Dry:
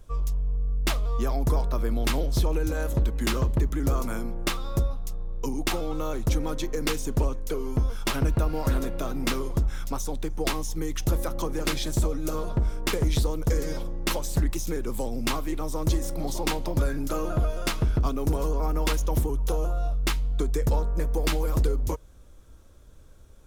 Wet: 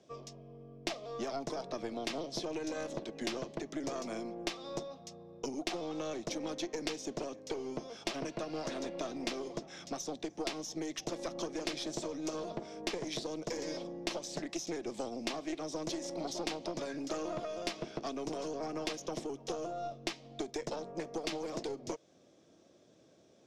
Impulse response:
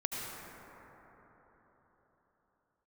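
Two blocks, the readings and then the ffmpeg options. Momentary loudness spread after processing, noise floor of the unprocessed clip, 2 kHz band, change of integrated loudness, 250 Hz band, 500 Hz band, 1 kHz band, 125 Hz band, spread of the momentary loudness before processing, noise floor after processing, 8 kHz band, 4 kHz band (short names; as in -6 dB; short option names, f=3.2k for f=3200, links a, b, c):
4 LU, -48 dBFS, -9.5 dB, -11.0 dB, -8.5 dB, -6.5 dB, -8.0 dB, -23.5 dB, 5 LU, -63 dBFS, -8.5 dB, -6.5 dB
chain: -filter_complex "[0:a]highpass=f=160:w=0.5412,highpass=f=160:w=1.3066,equalizer=f=340:t=q:w=4:g=5,equalizer=f=670:t=q:w=4:g=8,equalizer=f=970:t=q:w=4:g=-7,equalizer=f=1.4k:t=q:w=4:g=-10,equalizer=f=5.4k:t=q:w=4:g=4,lowpass=f=6.4k:w=0.5412,lowpass=f=6.4k:w=1.3066,aeval=exprs='(tanh(7.94*val(0)+0.7)-tanh(0.7))/7.94':c=same,acrossover=split=340|1300[a][b][c];[a]acompressor=threshold=-46dB:ratio=4[d];[b]acompressor=threshold=-40dB:ratio=4[e];[c]acompressor=threshold=-39dB:ratio=4[f];[d][e][f]amix=inputs=3:normalize=0,volume=1dB"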